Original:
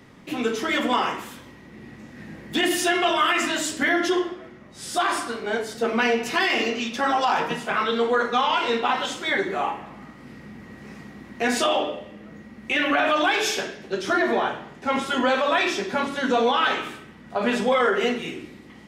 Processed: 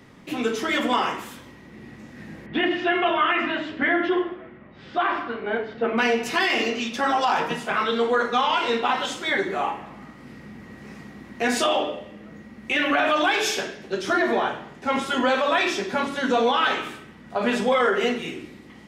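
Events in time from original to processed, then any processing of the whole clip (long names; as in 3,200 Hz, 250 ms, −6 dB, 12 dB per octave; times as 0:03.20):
0:02.46–0:05.98: low-pass filter 2,900 Hz 24 dB per octave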